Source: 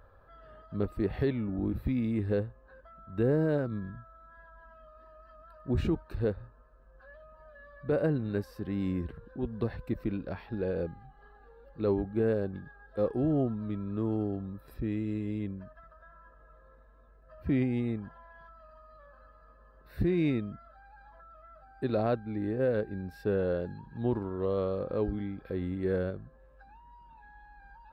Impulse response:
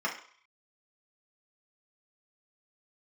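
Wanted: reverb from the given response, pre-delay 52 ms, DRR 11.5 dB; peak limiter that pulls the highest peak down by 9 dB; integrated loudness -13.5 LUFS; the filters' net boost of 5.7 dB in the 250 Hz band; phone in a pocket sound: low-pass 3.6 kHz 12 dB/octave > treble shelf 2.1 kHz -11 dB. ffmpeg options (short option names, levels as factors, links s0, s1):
-filter_complex "[0:a]equalizer=f=250:t=o:g=7.5,alimiter=limit=0.0708:level=0:latency=1,asplit=2[s0][s1];[1:a]atrim=start_sample=2205,adelay=52[s2];[s1][s2]afir=irnorm=-1:irlink=0,volume=0.1[s3];[s0][s3]amix=inputs=2:normalize=0,lowpass=3600,highshelf=f=2100:g=-11,volume=9.44"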